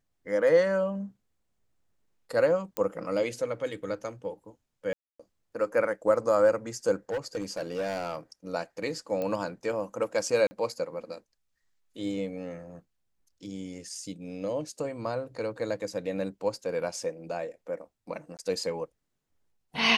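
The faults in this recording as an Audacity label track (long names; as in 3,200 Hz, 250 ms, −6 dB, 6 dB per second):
2.770000	2.770000	click −14 dBFS
4.930000	5.200000	drop-out 265 ms
7.100000	8.170000	clipping −27 dBFS
9.220000	9.220000	click −20 dBFS
10.470000	10.510000	drop-out 40 ms
18.370000	18.390000	drop-out 18 ms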